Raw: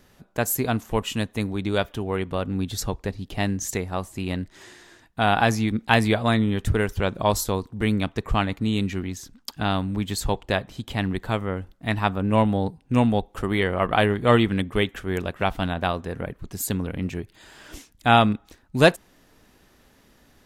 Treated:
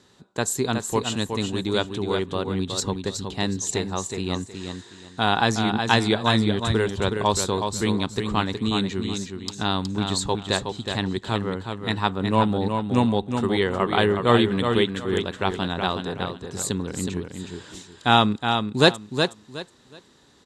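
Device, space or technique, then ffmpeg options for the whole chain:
car door speaker: -af "highpass=90,equalizer=f=390:t=q:w=4:g=5,equalizer=f=650:t=q:w=4:g=-5,equalizer=f=970:t=q:w=4:g=4,equalizer=f=2.3k:t=q:w=4:g=-4,equalizer=f=3.9k:t=q:w=4:g=10,equalizer=f=7.5k:t=q:w=4:g=7,lowpass=f=9.3k:w=0.5412,lowpass=f=9.3k:w=1.3066,aecho=1:1:368|736|1104:0.501|0.12|0.0289,volume=-1dB"

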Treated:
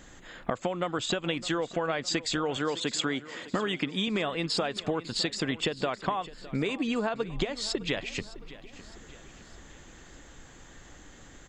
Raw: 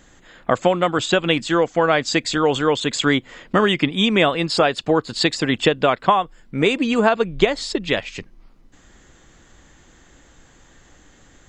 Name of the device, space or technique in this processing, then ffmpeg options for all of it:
serial compression, peaks first: -filter_complex "[0:a]asettb=1/sr,asplit=3[a][b][c];[a]atrim=end=2.574[d];[b]atrim=start=2.57:end=4.08,asetpts=PTS-STARTPTS,afade=t=in:d=0.004:c=qsin,afade=t=out:st=1.506:d=0.004:c=qsin,highpass=130[e];[c]atrim=start=4.076[f];[d][e]acrossfade=d=0.004:c1=hsin:c2=qsin[g];[g][f]acrossfade=d=0.004:c1=qsin:c2=hsin,acompressor=threshold=-23dB:ratio=5,acompressor=threshold=-32dB:ratio=1.5,aecho=1:1:610|1220|1830|2440:0.133|0.0667|0.0333|0.0167"

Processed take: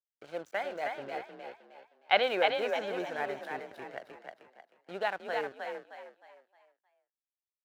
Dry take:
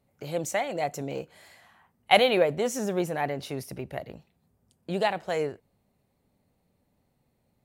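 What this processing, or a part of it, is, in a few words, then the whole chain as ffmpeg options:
pocket radio on a weak battery: -filter_complex "[0:a]highpass=350,lowpass=3.5k,aeval=exprs='sgn(val(0))*max(abs(val(0))-0.00562,0)':c=same,highpass=f=51:w=0.5412,highpass=f=51:w=1.3066,equalizer=f=1.5k:t=o:w=0.32:g=10,asettb=1/sr,asplit=3[a][b][c];[a]atrim=end=0.874[d];[b]atrim=start=0.87:end=2.23,asetpts=PTS-STARTPTS,afade=t=in:d=0.004:c=qsin,afade=t=out:st=1.356:d=0.004:c=qsin,highshelf=f=6.1k:t=q:w=1.5:g=-11[e];[c]atrim=start=2.226[f];[d][e]acrossfade=d=0.004:c1=hsin:c2=qsin[g];[g][f]acrossfade=d=0.004:c1=qsin:c2=hsin,asplit=6[h][i][j][k][l][m];[i]adelay=311,afreqshift=39,volume=-4dB[n];[j]adelay=622,afreqshift=78,volume=-12.9dB[o];[k]adelay=933,afreqshift=117,volume=-21.7dB[p];[l]adelay=1244,afreqshift=156,volume=-30.6dB[q];[m]adelay=1555,afreqshift=195,volume=-39.5dB[r];[h][n][o][p][q][r]amix=inputs=6:normalize=0,volume=-6dB"

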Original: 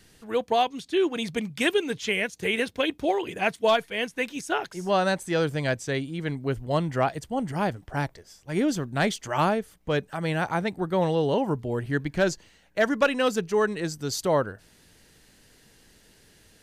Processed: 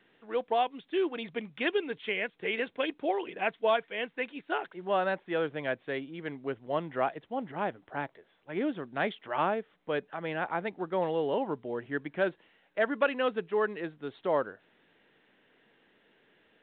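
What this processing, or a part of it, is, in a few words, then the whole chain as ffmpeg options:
telephone: -af "highpass=280,lowpass=3k,volume=-4.5dB" -ar 8000 -c:a pcm_mulaw

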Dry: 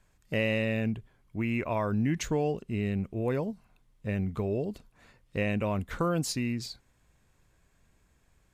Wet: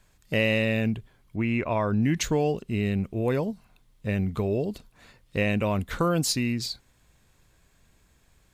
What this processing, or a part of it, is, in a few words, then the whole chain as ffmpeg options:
presence and air boost: -filter_complex "[0:a]asettb=1/sr,asplit=3[a][b][c];[a]atrim=end=1.364[d];[b]atrim=start=1.36:end=2.03,asetpts=PTS-STARTPTS,afade=t=in:d=0.004:c=qsin,afade=t=out:st=0.666:d=0.004:c=qsin,aemphasis=mode=reproduction:type=50kf[e];[c]atrim=start=2.026[f];[d][e]acrossfade=d=0.004:c1=hsin:c2=qsin[g];[g][f]acrossfade=d=0.004:c1=qsin:c2=hsin,equalizer=f=3.9k:t=o:w=0.91:g=4.5,highshelf=f=10k:g=6.5,volume=4dB"

